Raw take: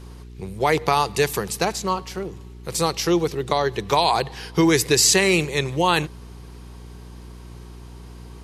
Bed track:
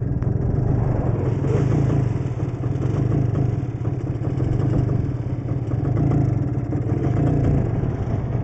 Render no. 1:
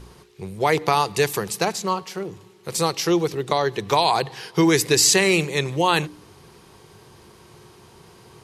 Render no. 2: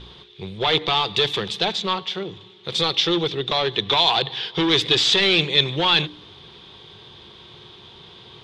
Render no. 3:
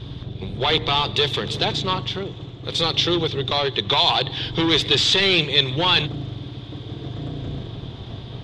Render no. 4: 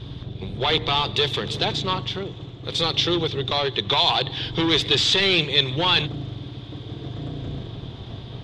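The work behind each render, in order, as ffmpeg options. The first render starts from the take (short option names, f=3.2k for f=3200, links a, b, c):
-af "bandreject=f=60:t=h:w=4,bandreject=f=120:t=h:w=4,bandreject=f=180:t=h:w=4,bandreject=f=240:t=h:w=4,bandreject=f=300:t=h:w=4"
-af "volume=18.5dB,asoftclip=hard,volume=-18.5dB,lowpass=f=3.5k:t=q:w=13"
-filter_complex "[1:a]volume=-11.5dB[a];[0:a][a]amix=inputs=2:normalize=0"
-af "volume=-1.5dB"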